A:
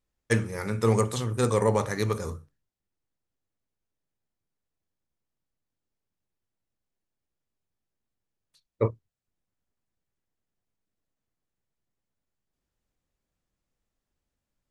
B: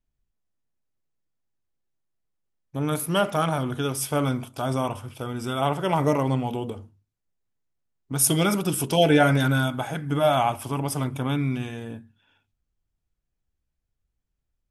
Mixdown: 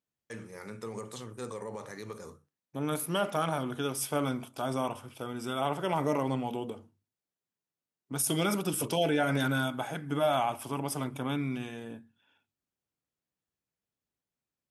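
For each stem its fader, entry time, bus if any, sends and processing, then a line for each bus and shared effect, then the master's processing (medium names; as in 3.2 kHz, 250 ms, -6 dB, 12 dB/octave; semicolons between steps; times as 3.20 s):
-10.0 dB, 0.00 s, no send, peak limiter -19 dBFS, peak gain reduction 10 dB
-5.0 dB, 0.00 s, no send, none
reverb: none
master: high-pass 170 Hz 12 dB/octave; peak limiter -18.5 dBFS, peak gain reduction 7.5 dB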